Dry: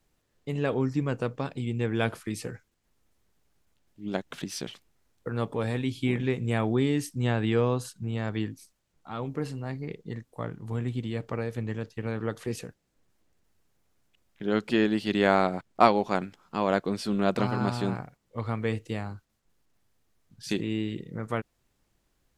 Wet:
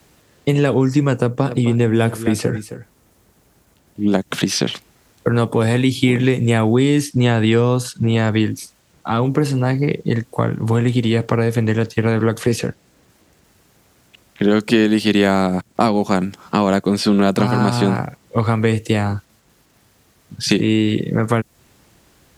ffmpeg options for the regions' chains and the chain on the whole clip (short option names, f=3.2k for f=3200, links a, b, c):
-filter_complex "[0:a]asettb=1/sr,asplit=3[a][b][c];[a]atrim=end=1.184[d];[b]atrim=start=1.18:end=4.22,asetpts=PTS-STARTPTS,afade=t=in:d=0.004:c=qsin,afade=t=out:st=3.036:d=0.004:c=qsin,equalizer=f=3.3k:w=0.46:g=-5.5,aecho=1:1:264:0.15,atrim=end_sample=134064[e];[c]atrim=start=4.216[f];[d][e]acrossfade=d=0.004:c1=hsin:c2=qsin[g];[g][f]acrossfade=d=0.004:c1=qsin:c2=hsin,highpass=67,acrossover=split=280|6100[h][i][j];[h]acompressor=threshold=-39dB:ratio=4[k];[i]acompressor=threshold=-40dB:ratio=4[l];[j]acompressor=threshold=-56dB:ratio=4[m];[k][l][m]amix=inputs=3:normalize=0,alimiter=level_in=21.5dB:limit=-1dB:release=50:level=0:latency=1"